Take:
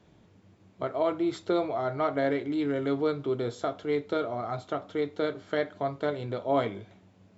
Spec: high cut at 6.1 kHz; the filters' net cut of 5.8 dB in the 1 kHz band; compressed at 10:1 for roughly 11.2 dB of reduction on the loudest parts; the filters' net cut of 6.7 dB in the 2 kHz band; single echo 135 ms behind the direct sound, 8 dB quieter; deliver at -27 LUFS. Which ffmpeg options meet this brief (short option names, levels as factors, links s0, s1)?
-af "lowpass=6100,equalizer=f=1000:t=o:g=-8,equalizer=f=2000:t=o:g=-5.5,acompressor=threshold=0.0178:ratio=10,aecho=1:1:135:0.398,volume=4.47"